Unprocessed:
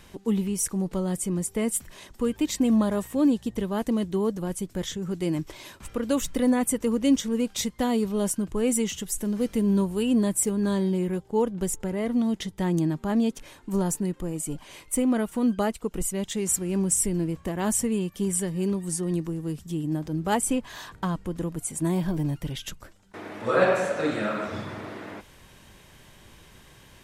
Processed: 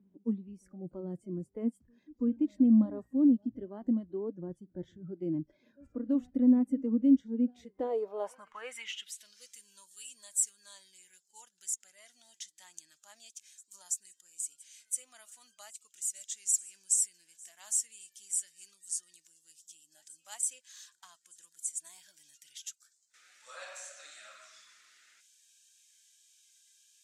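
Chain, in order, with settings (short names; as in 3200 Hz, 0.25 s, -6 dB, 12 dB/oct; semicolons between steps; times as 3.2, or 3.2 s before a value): reverse echo 0.332 s -21.5 dB; band-pass sweep 240 Hz -> 7000 Hz, 7.52–9.52; spectral noise reduction 16 dB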